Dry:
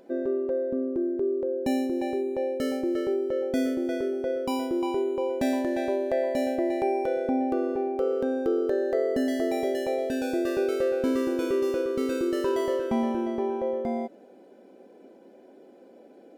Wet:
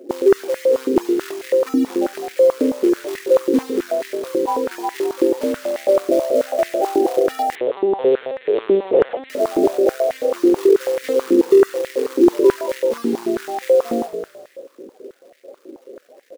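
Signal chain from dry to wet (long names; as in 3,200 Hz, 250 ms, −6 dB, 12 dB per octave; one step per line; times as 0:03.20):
gate on every frequency bin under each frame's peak −10 dB strong
in parallel at −1 dB: speech leveller 2 s
on the sum: floating-point word with a short mantissa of 2 bits
on a send: echo with shifted repeats 207 ms, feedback 52%, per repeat −53 Hz, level −10.5 dB
0:07.55–0:09.30: on the sum: linear-prediction vocoder at 8 kHz pitch kept
high-pass on a step sequencer 9.2 Hz 320–1,900 Hz
level +1 dB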